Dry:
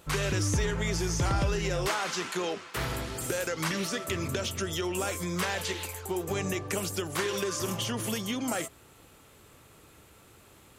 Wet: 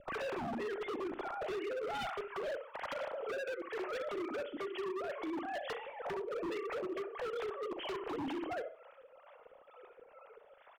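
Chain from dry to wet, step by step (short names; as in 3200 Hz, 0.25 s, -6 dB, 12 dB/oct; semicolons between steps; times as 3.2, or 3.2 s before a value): sine-wave speech; tilt -4.5 dB/oct; soft clip -12 dBFS, distortion -24 dB; 2.94–5.22 low shelf 210 Hz -11.5 dB; compressor 5:1, threshold -36 dBFS, peak gain reduction 16.5 dB; harmonic tremolo 2.2 Hz, depth 70%, crossover 520 Hz; doubler 38 ms -12 dB; flutter echo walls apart 11.6 m, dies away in 0.39 s; wavefolder -38 dBFS; gain +4.5 dB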